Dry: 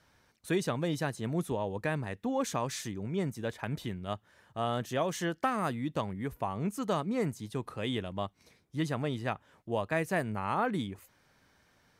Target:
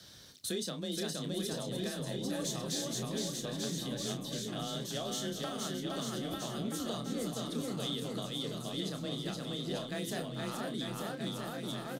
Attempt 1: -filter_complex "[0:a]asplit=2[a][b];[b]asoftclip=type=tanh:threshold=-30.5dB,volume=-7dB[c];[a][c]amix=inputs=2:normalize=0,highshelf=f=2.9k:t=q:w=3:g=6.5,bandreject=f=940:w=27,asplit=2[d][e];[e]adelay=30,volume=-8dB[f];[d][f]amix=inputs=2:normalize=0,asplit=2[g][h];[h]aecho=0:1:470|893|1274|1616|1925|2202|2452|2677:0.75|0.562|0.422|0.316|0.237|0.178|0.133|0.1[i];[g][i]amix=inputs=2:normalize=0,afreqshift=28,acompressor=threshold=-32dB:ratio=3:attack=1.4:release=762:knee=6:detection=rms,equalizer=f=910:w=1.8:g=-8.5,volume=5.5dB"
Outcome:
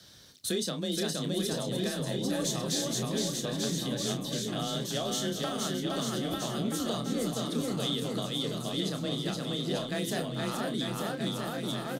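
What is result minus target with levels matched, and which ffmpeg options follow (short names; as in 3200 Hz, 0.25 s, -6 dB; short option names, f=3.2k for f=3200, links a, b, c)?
compressor: peak gain reduction -4.5 dB; soft clip: distortion -6 dB
-filter_complex "[0:a]asplit=2[a][b];[b]asoftclip=type=tanh:threshold=-39.5dB,volume=-7dB[c];[a][c]amix=inputs=2:normalize=0,highshelf=f=2.9k:t=q:w=3:g=6.5,bandreject=f=940:w=27,asplit=2[d][e];[e]adelay=30,volume=-8dB[f];[d][f]amix=inputs=2:normalize=0,asplit=2[g][h];[h]aecho=0:1:470|893|1274|1616|1925|2202|2452|2677:0.75|0.562|0.422|0.316|0.237|0.178|0.133|0.1[i];[g][i]amix=inputs=2:normalize=0,afreqshift=28,acompressor=threshold=-39.5dB:ratio=3:attack=1.4:release=762:knee=6:detection=rms,equalizer=f=910:w=1.8:g=-8.5,volume=5.5dB"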